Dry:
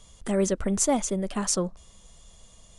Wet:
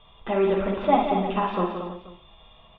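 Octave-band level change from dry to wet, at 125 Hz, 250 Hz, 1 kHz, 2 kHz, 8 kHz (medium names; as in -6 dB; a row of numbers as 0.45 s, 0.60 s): 0.0 dB, +0.5 dB, +11.0 dB, +5.0 dB, under -40 dB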